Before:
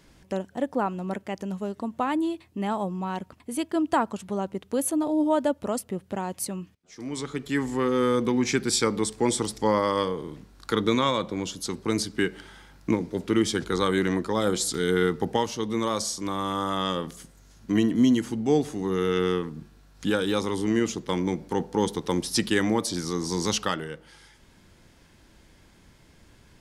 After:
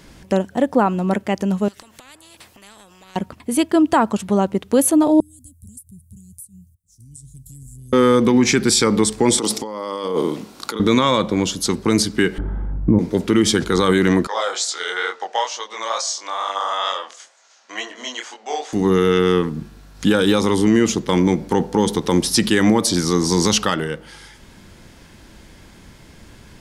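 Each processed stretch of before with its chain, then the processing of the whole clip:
1.68–3.16 compressor 12:1, threshold -39 dBFS + spectral compressor 4:1
5.2–7.93 Chebyshev band-stop 100–8900 Hz, order 3 + compressor 8:1, threshold -46 dBFS
9.38–10.8 HPF 260 Hz + bell 1700 Hz -7.5 dB 0.48 oct + negative-ratio compressor -35 dBFS
12.38–12.99 LPF 1200 Hz + tilt -4.5 dB/oct
14.27–18.73 elliptic band-pass 640–7000 Hz, stop band 80 dB + chorus 2.2 Hz, delay 20 ms, depth 7.3 ms
whole clip: bell 210 Hz +3 dB 0.21 oct; maximiser +15.5 dB; gain -4.5 dB

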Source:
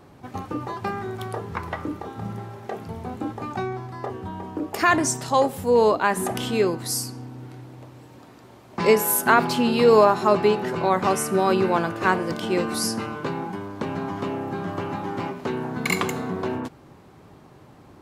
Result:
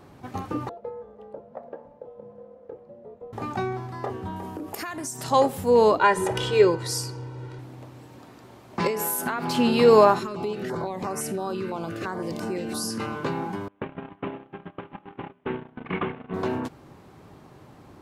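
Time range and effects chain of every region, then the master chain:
0.69–3.33 frequency shift -320 Hz + band-pass 530 Hz, Q 4
4.36–5.24 bell 12000 Hz +12 dB 1.1 oct + compressor 8:1, threshold -30 dBFS
5.98–7.59 air absorption 56 m + comb 2.1 ms, depth 91%
8.87–9.55 compressor 12:1, threshold -23 dBFS + doubler 12 ms -12 dB
10.19–13 compressor, threshold -25 dBFS + stepped notch 5.9 Hz 750–3300 Hz
13.68–16.34 CVSD 16 kbps + notches 50/100 Hz + gate -28 dBFS, range -26 dB
whole clip: dry

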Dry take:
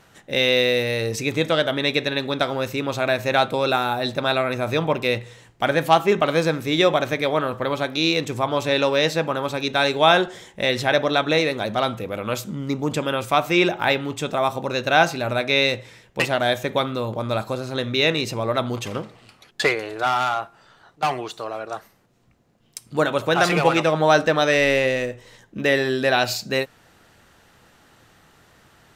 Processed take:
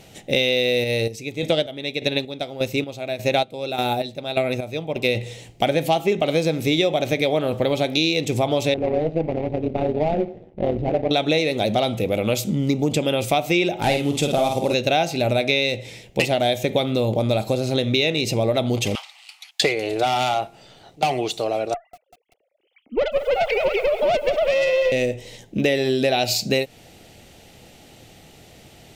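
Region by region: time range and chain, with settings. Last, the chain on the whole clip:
0.84–5.15 chopper 1.7 Hz, depth 60%, duty 40% + upward expander, over -32 dBFS
8.74–11.11 median filter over 41 samples + LPF 1800 Hz + AM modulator 170 Hz, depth 60%
13.82–14.74 CVSD 64 kbps + doubler 49 ms -5 dB
18.95–19.61 steep high-pass 870 Hz 48 dB/oct + dynamic EQ 4000 Hz, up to +4 dB, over -49 dBFS, Q 0.71
21.74–24.92 sine-wave speech + tube stage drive 17 dB, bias 0.7 + lo-fi delay 0.193 s, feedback 55%, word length 8-bit, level -11.5 dB
whole clip: band shelf 1300 Hz -13.5 dB 1.1 oct; compressor, threshold -25 dBFS; gain +8.5 dB

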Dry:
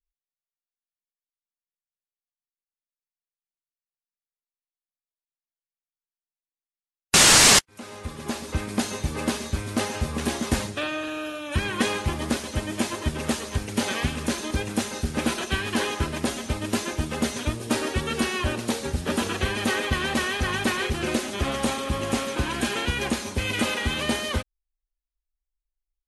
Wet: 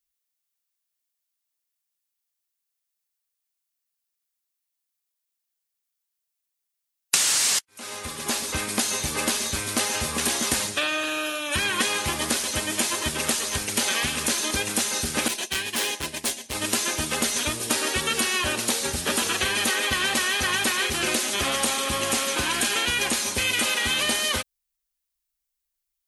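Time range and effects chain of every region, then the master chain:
15.28–16.55 expander -25 dBFS + bell 1300 Hz -12.5 dB 0.33 oct + hard clip -28 dBFS
whole clip: tilt +3 dB/oct; compressor 8:1, threshold -24 dBFS; gain +4 dB

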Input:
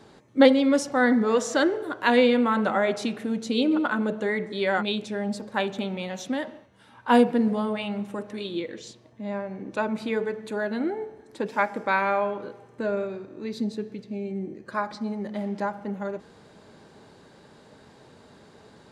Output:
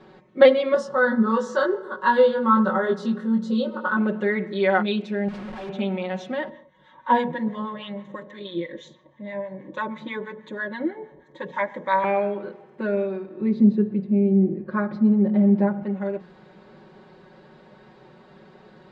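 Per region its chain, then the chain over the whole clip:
0.74–3.97 fixed phaser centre 470 Hz, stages 8 + doubler 22 ms -3 dB
5.28–5.69 compressor 3:1, threshold -36 dBFS + Schmitt trigger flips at -44 dBFS
6.49–12.04 ripple EQ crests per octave 1.1, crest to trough 13 dB + harmonic tremolo 6.2 Hz, crossover 850 Hz
13.41–15.83 HPF 90 Hz + tilt -4 dB/oct
whole clip: LPF 2900 Hz 12 dB/oct; notches 60/120/180/240 Hz; comb 5.4 ms, depth 97%

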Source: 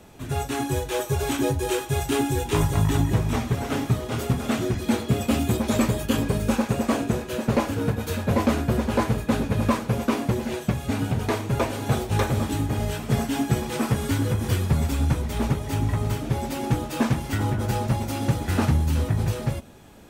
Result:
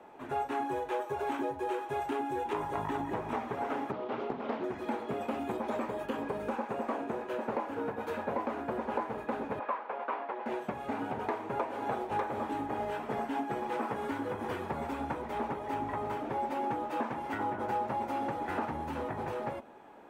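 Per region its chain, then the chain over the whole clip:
3.91–4.64 speaker cabinet 120–4600 Hz, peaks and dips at 200 Hz +4 dB, 840 Hz -5 dB, 1700 Hz -8 dB + Doppler distortion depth 0.89 ms
9.59–10.46 HPF 680 Hz + air absorption 290 m
whole clip: three-band isolator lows -23 dB, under 270 Hz, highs -20 dB, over 2300 Hz; compressor, threshold -30 dBFS; bell 880 Hz +6.5 dB 0.47 oct; gain -2 dB

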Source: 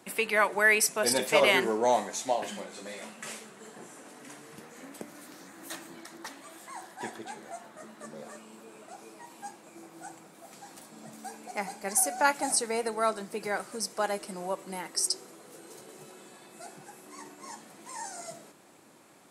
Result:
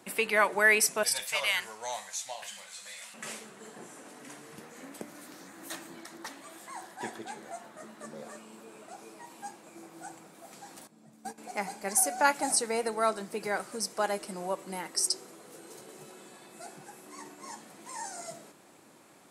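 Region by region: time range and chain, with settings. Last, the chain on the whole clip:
1.03–3.14 passive tone stack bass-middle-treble 10-0-10 + notch 400 Hz, Q 10 + mismatched tape noise reduction encoder only
10.87–11.38 gate -43 dBFS, range -15 dB + low shelf 290 Hz +10.5 dB
whole clip: dry

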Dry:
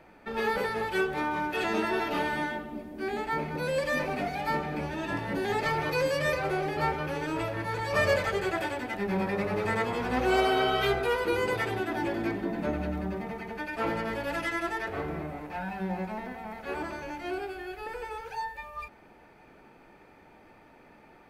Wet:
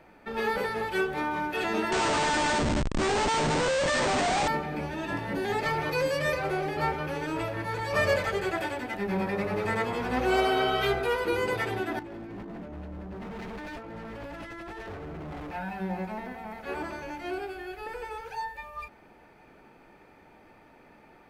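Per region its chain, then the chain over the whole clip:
1.92–4.48 EQ curve 210 Hz 0 dB, 980 Hz +9 dB, 12000 Hz -5 dB + Schmitt trigger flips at -33.5 dBFS + brick-wall FIR low-pass 9000 Hz
11.99–15.51 negative-ratio compressor -39 dBFS + tilt -2 dB/oct + hard clip -37 dBFS
whole clip: dry

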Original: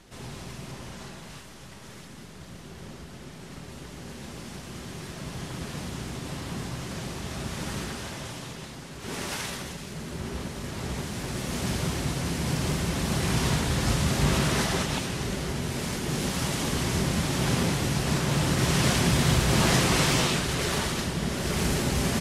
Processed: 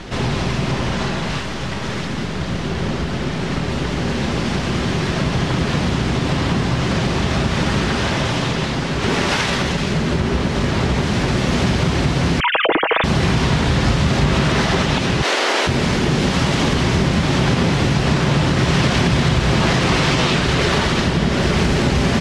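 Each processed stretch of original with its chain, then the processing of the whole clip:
12.4–13.04 sine-wave speech + comb 6.2 ms, depth 33% + Doppler distortion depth 0.12 ms
15.22–15.66 spectral limiter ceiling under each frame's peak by 17 dB + HPF 320 Hz 24 dB/oct
whole clip: LPF 4400 Hz 12 dB/oct; compressor 4:1, threshold -37 dBFS; maximiser +26.5 dB; gain -5 dB

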